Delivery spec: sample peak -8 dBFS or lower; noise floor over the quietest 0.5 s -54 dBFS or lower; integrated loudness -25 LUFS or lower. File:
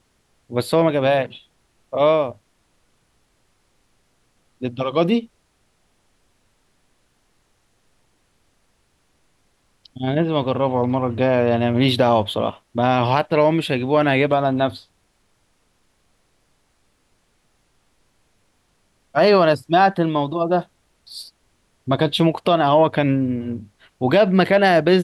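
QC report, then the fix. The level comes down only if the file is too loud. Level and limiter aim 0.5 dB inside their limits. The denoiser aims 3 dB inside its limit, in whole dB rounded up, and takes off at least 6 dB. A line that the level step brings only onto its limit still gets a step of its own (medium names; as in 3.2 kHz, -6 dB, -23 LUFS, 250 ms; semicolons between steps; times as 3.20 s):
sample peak -5.5 dBFS: fail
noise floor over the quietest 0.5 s -64 dBFS: pass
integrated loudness -19.0 LUFS: fail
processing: trim -6.5 dB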